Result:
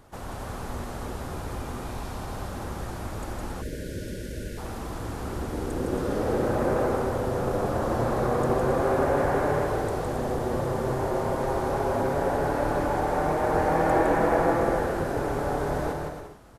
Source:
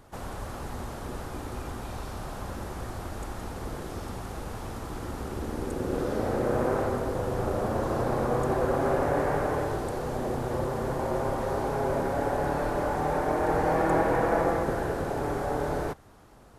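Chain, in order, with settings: on a send: bouncing-ball echo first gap 0.16 s, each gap 0.7×, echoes 5; on the sum: spectral gain 3.62–4.58, 640–1400 Hz -27 dB

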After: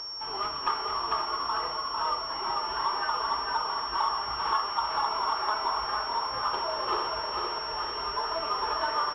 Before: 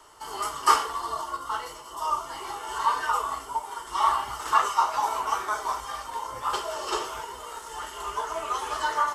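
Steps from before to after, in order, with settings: compressor 4:1, threshold -27 dBFS, peak gain reduction 12 dB; echo 0.516 s -8 dB; upward compressor, threshold -46 dBFS; thinning echo 0.449 s, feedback 57%, level -3 dB; pulse-width modulation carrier 5500 Hz

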